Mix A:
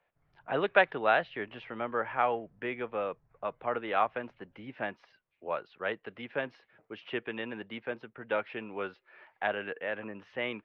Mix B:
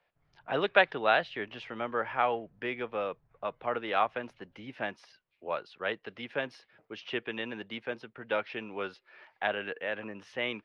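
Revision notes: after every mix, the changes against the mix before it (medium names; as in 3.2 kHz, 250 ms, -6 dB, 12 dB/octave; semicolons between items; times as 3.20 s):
speech: remove low-pass 2.6 kHz 12 dB/octave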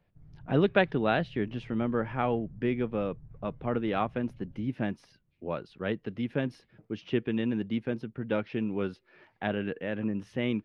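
speech -4.5 dB; master: remove three-band isolator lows -21 dB, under 530 Hz, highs -13 dB, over 6.7 kHz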